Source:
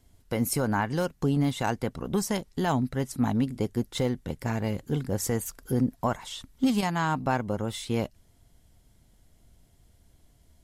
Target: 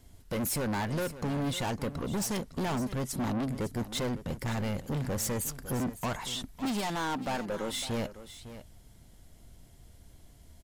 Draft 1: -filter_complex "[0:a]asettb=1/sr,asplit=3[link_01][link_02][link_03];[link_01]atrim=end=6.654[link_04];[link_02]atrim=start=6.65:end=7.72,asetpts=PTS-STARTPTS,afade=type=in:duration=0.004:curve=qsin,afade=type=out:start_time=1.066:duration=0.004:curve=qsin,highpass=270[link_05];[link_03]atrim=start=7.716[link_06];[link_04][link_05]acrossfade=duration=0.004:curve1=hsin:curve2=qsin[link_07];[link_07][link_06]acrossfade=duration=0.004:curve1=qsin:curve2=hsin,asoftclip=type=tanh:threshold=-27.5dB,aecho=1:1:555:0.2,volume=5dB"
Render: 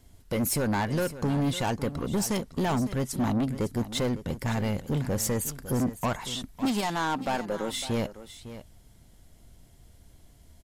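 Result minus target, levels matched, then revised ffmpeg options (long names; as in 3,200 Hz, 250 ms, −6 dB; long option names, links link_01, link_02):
soft clipping: distortion −4 dB
-filter_complex "[0:a]asettb=1/sr,asplit=3[link_01][link_02][link_03];[link_01]atrim=end=6.654[link_04];[link_02]atrim=start=6.65:end=7.72,asetpts=PTS-STARTPTS,afade=type=in:duration=0.004:curve=qsin,afade=type=out:start_time=1.066:duration=0.004:curve=qsin,highpass=270[link_05];[link_03]atrim=start=7.716[link_06];[link_04][link_05]acrossfade=duration=0.004:curve1=hsin:curve2=qsin[link_07];[link_07][link_06]acrossfade=duration=0.004:curve1=qsin:curve2=hsin,asoftclip=type=tanh:threshold=-34dB,aecho=1:1:555:0.2,volume=5dB"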